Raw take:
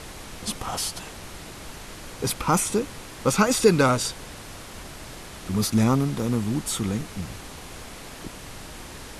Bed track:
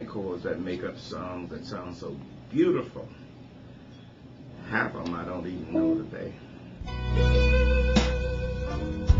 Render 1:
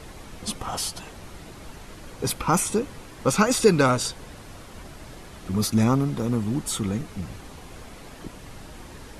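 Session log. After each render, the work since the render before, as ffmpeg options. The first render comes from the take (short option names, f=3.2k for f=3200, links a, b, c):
-af "afftdn=nr=7:nf=-41"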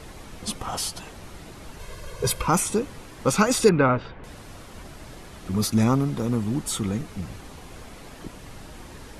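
-filter_complex "[0:a]asettb=1/sr,asplit=3[a][b][c];[a]atrim=end=1.794[d];[b]atrim=start=1.79:end=2.47,asetpts=PTS-STARTPTS,afade=t=in:d=0.004:c=qsin,afade=t=out:st=0.676:d=0.004:c=qsin,aecho=1:1:1.9:0.9,atrim=end_sample=29988[e];[c]atrim=start=2.466[f];[d][e]acrossfade=d=0.004:c1=hsin:c2=qsin[g];[g][f]acrossfade=d=0.004:c1=qsin:c2=hsin,asettb=1/sr,asplit=3[h][i][j];[h]atrim=end=3.694[k];[i]atrim=start=3.69:end=4.24,asetpts=PTS-STARTPTS,afade=t=in:d=0.004:c=qsin,afade=t=out:st=0.546:d=0.004:c=qsin,lowpass=f=2.5k:w=0.5412,lowpass=f=2.5k:w=1.3066[l];[j]atrim=start=4.236[m];[k][l]acrossfade=d=0.004:c1=hsin:c2=qsin[n];[n][m]acrossfade=d=0.004:c1=qsin:c2=hsin"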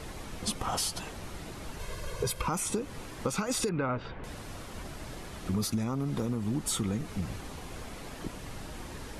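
-af "alimiter=limit=-16dB:level=0:latency=1:release=250,acompressor=threshold=-27dB:ratio=6"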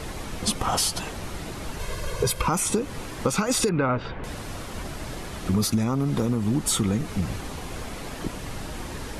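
-af "volume=7.5dB"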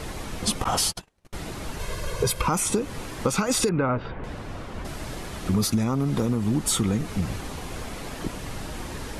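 -filter_complex "[0:a]asettb=1/sr,asplit=3[a][b][c];[a]atrim=end=0.644[d];[b]atrim=start=0.64:end=1.33,asetpts=PTS-STARTPTS,afade=t=in:d=0.004:c=qsin,afade=t=out:st=0.686:d=0.004:c=qsin,agate=range=-39dB:threshold=-29dB:ratio=16:release=100:detection=peak[e];[c]atrim=start=1.326[f];[d][e]acrossfade=d=0.004:c1=hsin:c2=qsin[g];[g][f]acrossfade=d=0.004:c1=qsin:c2=hsin,asettb=1/sr,asplit=3[h][i][j];[h]atrim=end=3.694[k];[i]atrim=start=3.69:end=4.85,asetpts=PTS-STARTPTS,afade=t=in:d=0.004:c=qsin,afade=t=out:st=1.156:d=0.004:c=qsin,lowpass=f=2.1k:p=1[l];[j]atrim=start=4.846[m];[k][l]acrossfade=d=0.004:c1=hsin:c2=qsin[n];[n][m]acrossfade=d=0.004:c1=qsin:c2=hsin"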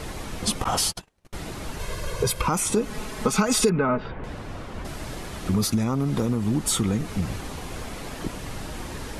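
-filter_complex "[0:a]asettb=1/sr,asplit=3[a][b][c];[a]atrim=end=2.764[d];[b]atrim=start=2.76:end=4.04,asetpts=PTS-STARTPTS,afade=t=in:d=0.004:c=qsin,afade=t=out:st=1.276:d=0.004:c=qsin,aecho=1:1:4.7:0.66,atrim=end_sample=56448[e];[c]atrim=start=4.036[f];[d][e]acrossfade=d=0.004:c1=hsin:c2=qsin[g];[g][f]acrossfade=d=0.004:c1=qsin:c2=hsin"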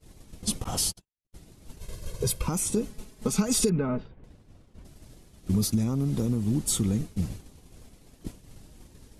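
-af "agate=range=-33dB:threshold=-23dB:ratio=3:detection=peak,equalizer=f=1.3k:t=o:w=2.8:g=-13"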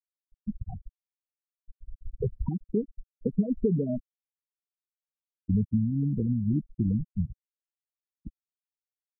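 -af "lowpass=2k,afftfilt=real='re*gte(hypot(re,im),0.158)':imag='im*gte(hypot(re,im),0.158)':win_size=1024:overlap=0.75"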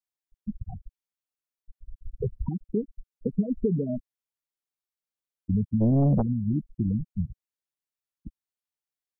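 -filter_complex "[0:a]asplit=3[a][b][c];[a]afade=t=out:st=5.8:d=0.02[d];[b]aeval=exprs='0.141*sin(PI/2*2.24*val(0)/0.141)':c=same,afade=t=in:st=5.8:d=0.02,afade=t=out:st=6.21:d=0.02[e];[c]afade=t=in:st=6.21:d=0.02[f];[d][e][f]amix=inputs=3:normalize=0"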